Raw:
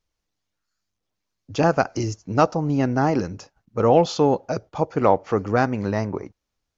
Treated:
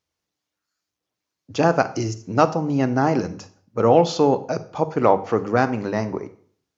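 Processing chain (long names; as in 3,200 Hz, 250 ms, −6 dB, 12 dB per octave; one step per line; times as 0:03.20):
high-pass filter 98 Hz
mains-hum notches 50/100/150/200 Hz
on a send: convolution reverb RT60 0.50 s, pre-delay 27 ms, DRR 13 dB
on the sum: level +1 dB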